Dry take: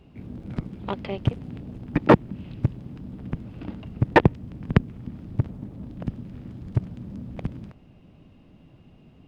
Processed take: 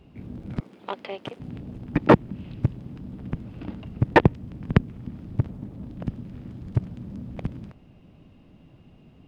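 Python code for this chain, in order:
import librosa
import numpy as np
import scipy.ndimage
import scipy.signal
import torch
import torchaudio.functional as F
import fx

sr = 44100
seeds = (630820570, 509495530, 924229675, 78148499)

y = fx.highpass(x, sr, hz=420.0, slope=12, at=(0.6, 1.4))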